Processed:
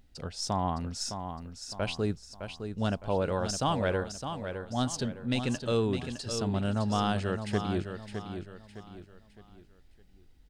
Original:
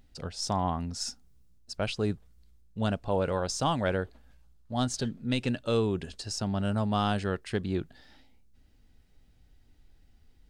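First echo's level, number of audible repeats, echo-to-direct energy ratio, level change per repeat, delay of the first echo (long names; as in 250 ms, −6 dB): −8.0 dB, 4, −7.5 dB, −8.5 dB, 611 ms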